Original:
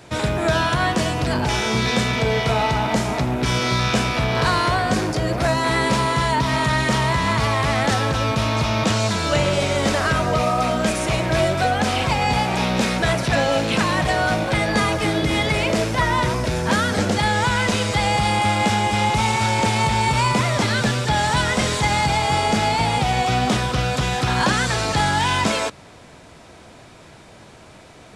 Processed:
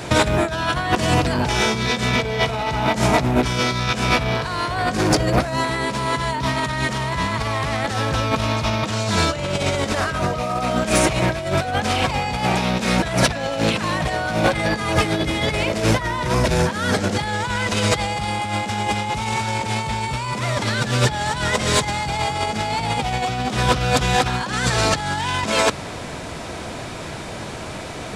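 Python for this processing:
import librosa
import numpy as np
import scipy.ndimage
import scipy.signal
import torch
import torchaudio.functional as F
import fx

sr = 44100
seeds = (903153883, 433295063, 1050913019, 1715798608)

y = fx.over_compress(x, sr, threshold_db=-25.0, ratio=-0.5)
y = 10.0 ** (-11.5 / 20.0) * np.tanh(y / 10.0 ** (-11.5 / 20.0))
y = y * librosa.db_to_amplitude(6.5)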